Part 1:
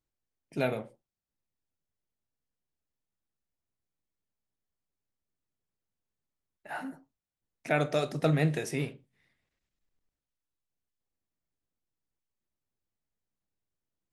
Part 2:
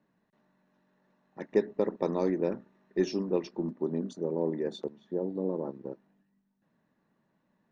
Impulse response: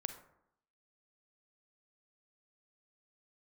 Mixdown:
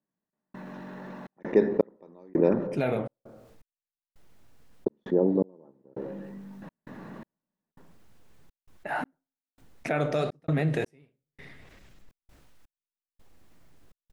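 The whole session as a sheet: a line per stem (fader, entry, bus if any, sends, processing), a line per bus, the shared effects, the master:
-2.5 dB, 2.20 s, send -11.5 dB, limiter -19.5 dBFS, peak gain reduction 6.5 dB; flange 1.7 Hz, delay 0.2 ms, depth 8 ms, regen +84%
+0.5 dB, 0.00 s, muted 2.67–4.86, send -4 dB, dry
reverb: on, RT60 0.75 s, pre-delay 32 ms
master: high shelf 3400 Hz -10 dB; step gate "...xxxx.xx" 83 bpm -60 dB; fast leveller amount 50%

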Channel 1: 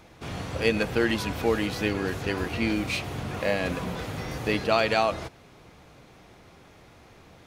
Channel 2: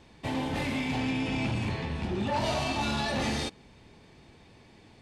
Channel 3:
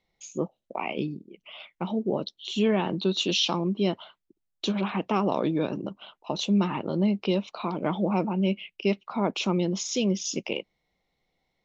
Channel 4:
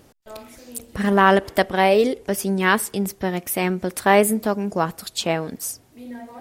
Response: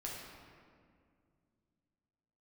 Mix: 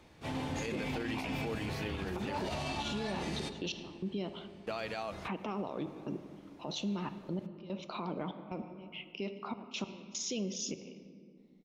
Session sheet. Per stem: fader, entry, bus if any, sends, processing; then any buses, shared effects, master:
-10.5 dB, 0.00 s, muted 2.59–4.67, no send, dry
-8.0 dB, 0.00 s, send -8 dB, notches 60/120 Hz
-5.5 dB, 0.35 s, send -8 dB, step gate "xxxxxx..x..." 147 bpm -24 dB; compressor, threshold -26 dBFS, peak gain reduction 7.5 dB
off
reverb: on, RT60 2.2 s, pre-delay 7 ms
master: limiter -28 dBFS, peak gain reduction 9.5 dB

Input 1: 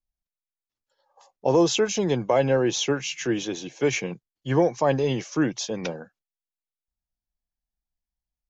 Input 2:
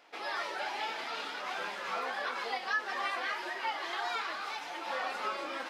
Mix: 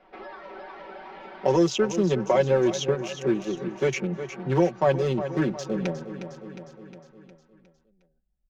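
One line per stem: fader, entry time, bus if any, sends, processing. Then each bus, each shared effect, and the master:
-1.5 dB, 0.00 s, no send, echo send -13.5 dB, Wiener smoothing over 41 samples
-11.0 dB, 0.00 s, no send, echo send -3.5 dB, Bessel low-pass 3800 Hz; tilt -4.5 dB/oct; limiter -32.5 dBFS, peak gain reduction 10 dB; auto duck -12 dB, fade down 1.20 s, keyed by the first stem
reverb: off
echo: feedback echo 0.359 s, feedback 45%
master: comb 5.3 ms, depth 85%; three-band squash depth 40%

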